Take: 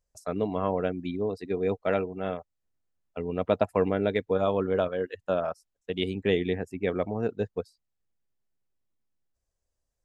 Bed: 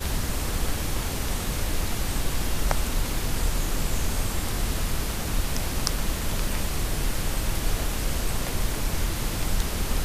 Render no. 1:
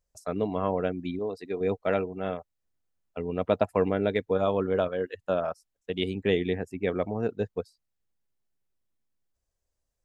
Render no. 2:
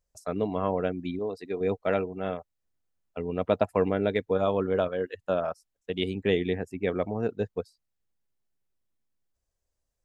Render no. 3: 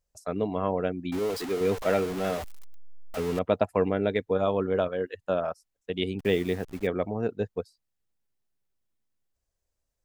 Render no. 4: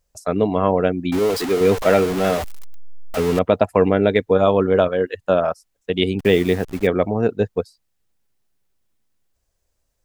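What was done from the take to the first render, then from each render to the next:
1.19–1.61 low shelf 210 Hz -10.5 dB
nothing audible
1.12–3.39 zero-crossing step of -30.5 dBFS; 6.19–6.87 level-crossing sampler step -42.5 dBFS
gain +10 dB; limiter -2 dBFS, peak gain reduction 3 dB

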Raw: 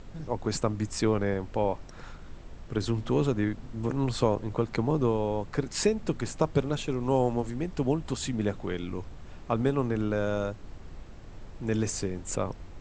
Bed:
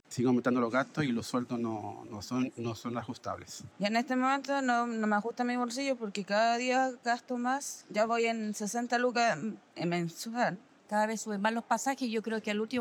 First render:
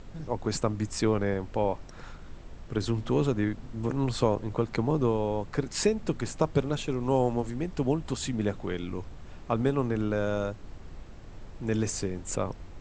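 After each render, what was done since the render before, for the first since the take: nothing audible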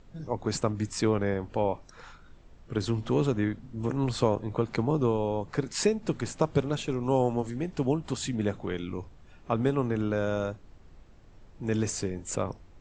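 noise print and reduce 9 dB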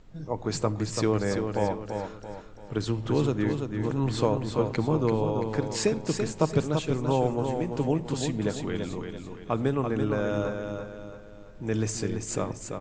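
feedback echo 0.337 s, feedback 41%, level -6 dB; shoebox room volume 3000 m³, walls furnished, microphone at 0.53 m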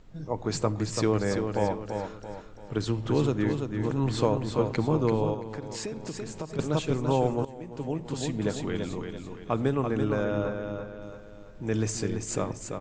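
5.34–6.59 compressor 3:1, threshold -34 dBFS; 7.45–8.51 fade in, from -17 dB; 10.24–11.02 air absorption 130 m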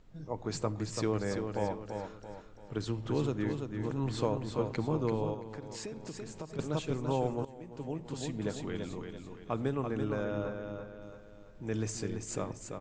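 gain -6.5 dB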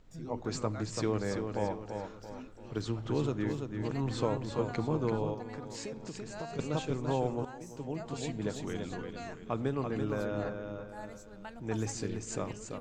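add bed -17 dB

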